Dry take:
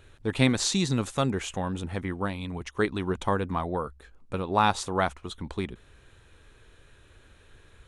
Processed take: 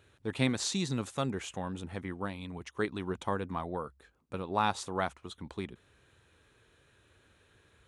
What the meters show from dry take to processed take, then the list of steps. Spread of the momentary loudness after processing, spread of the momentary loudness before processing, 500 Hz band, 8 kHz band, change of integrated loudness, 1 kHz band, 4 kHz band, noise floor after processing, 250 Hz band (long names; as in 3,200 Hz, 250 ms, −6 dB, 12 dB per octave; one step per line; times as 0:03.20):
12 LU, 11 LU, −6.5 dB, −6.5 dB, −6.5 dB, −6.5 dB, −6.5 dB, −67 dBFS, −6.5 dB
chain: high-pass filter 85 Hz
level −6.5 dB